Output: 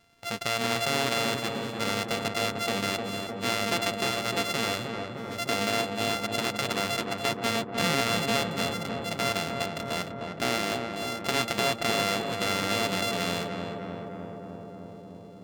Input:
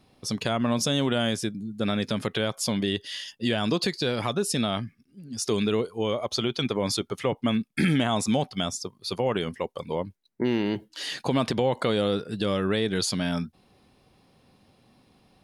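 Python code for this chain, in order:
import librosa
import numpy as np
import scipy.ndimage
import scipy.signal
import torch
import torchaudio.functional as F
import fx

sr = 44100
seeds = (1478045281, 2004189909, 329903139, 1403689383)

y = np.r_[np.sort(x[:len(x) // 64 * 64].reshape(-1, 64), axis=1).ravel(), x[len(x) // 64 * 64:]]
y = fx.peak_eq(y, sr, hz=3200.0, db=9.5, octaves=2.9)
y = fx.echo_filtered(y, sr, ms=305, feedback_pct=82, hz=1600.0, wet_db=-4)
y = y * librosa.db_to_amplitude(-7.0)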